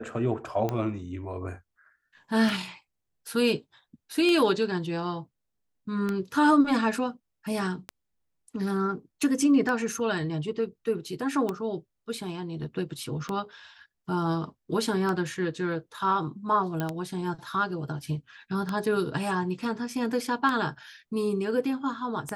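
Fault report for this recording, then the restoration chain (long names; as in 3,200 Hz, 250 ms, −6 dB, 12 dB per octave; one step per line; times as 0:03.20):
scratch tick 33 1/3 rpm −16 dBFS
0:16.80: click −16 dBFS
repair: click removal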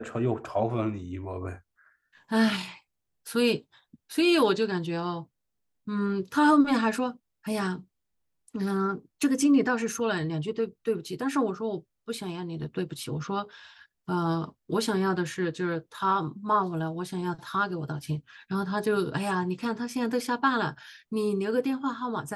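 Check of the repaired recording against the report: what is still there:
none of them is left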